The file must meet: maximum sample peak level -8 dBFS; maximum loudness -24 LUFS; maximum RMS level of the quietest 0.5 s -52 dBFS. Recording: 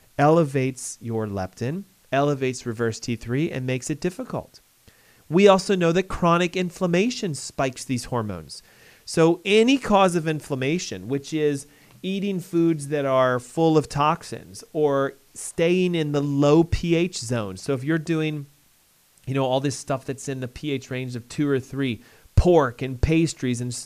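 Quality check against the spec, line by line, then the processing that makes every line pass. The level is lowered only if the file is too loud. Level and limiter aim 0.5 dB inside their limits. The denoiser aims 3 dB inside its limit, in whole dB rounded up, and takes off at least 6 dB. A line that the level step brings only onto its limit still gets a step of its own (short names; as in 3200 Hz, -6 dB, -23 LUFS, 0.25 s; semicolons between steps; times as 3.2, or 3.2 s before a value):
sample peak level -3.5 dBFS: fail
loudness -23.0 LUFS: fail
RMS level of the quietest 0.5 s -60 dBFS: OK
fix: gain -1.5 dB; limiter -8.5 dBFS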